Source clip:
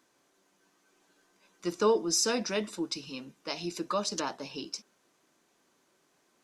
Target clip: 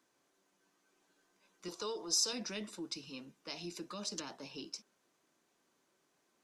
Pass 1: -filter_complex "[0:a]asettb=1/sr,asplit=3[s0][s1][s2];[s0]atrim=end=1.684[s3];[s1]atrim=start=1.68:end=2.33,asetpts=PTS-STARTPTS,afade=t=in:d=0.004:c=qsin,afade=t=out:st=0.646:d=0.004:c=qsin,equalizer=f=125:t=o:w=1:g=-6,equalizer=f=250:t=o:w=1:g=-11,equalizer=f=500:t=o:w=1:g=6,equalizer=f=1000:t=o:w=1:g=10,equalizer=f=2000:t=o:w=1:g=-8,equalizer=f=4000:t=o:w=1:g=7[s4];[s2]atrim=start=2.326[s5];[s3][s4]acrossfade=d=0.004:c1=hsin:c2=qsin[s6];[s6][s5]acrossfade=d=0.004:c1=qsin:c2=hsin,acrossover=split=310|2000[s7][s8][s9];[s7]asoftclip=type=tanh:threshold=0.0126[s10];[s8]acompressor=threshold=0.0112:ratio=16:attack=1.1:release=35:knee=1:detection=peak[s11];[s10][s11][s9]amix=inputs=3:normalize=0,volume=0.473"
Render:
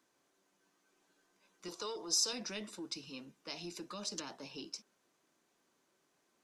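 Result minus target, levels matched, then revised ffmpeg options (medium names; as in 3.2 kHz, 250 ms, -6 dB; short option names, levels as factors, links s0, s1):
saturation: distortion +9 dB
-filter_complex "[0:a]asettb=1/sr,asplit=3[s0][s1][s2];[s0]atrim=end=1.684[s3];[s1]atrim=start=1.68:end=2.33,asetpts=PTS-STARTPTS,afade=t=in:d=0.004:c=qsin,afade=t=out:st=0.646:d=0.004:c=qsin,equalizer=f=125:t=o:w=1:g=-6,equalizer=f=250:t=o:w=1:g=-11,equalizer=f=500:t=o:w=1:g=6,equalizer=f=1000:t=o:w=1:g=10,equalizer=f=2000:t=o:w=1:g=-8,equalizer=f=4000:t=o:w=1:g=7[s4];[s2]atrim=start=2.326[s5];[s3][s4]acrossfade=d=0.004:c1=hsin:c2=qsin[s6];[s6][s5]acrossfade=d=0.004:c1=qsin:c2=hsin,acrossover=split=310|2000[s7][s8][s9];[s7]asoftclip=type=tanh:threshold=0.0282[s10];[s8]acompressor=threshold=0.0112:ratio=16:attack=1.1:release=35:knee=1:detection=peak[s11];[s10][s11][s9]amix=inputs=3:normalize=0,volume=0.473"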